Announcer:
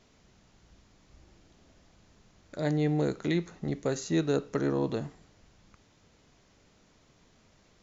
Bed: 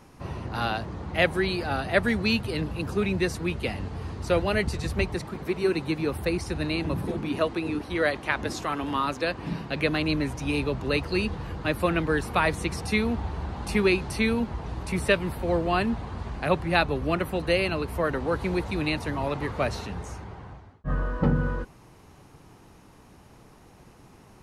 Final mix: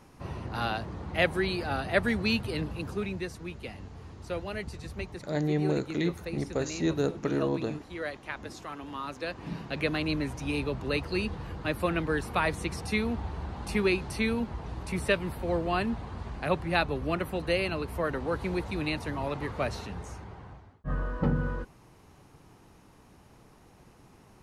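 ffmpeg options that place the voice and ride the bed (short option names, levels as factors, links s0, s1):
-filter_complex "[0:a]adelay=2700,volume=0.944[s0];[1:a]volume=1.58,afade=t=out:st=2.57:d=0.73:silence=0.398107,afade=t=in:st=8.97:d=0.76:silence=0.446684[s1];[s0][s1]amix=inputs=2:normalize=0"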